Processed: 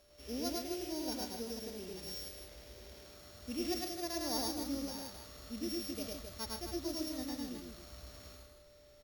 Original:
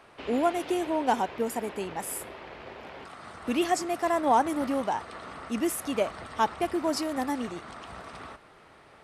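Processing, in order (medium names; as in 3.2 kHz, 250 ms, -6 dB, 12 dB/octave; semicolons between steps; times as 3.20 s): sorted samples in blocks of 8 samples; peaking EQ 150 Hz -10 dB 1.9 oct; harmonic-percussive split percussive -16 dB; amplifier tone stack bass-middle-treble 10-0-1; whistle 590 Hz -80 dBFS; harmonic-percussive split harmonic -6 dB; on a send: loudspeakers at several distances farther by 36 m -1 dB, 47 m -9 dB, 90 m -7 dB; on the sum: trim +18 dB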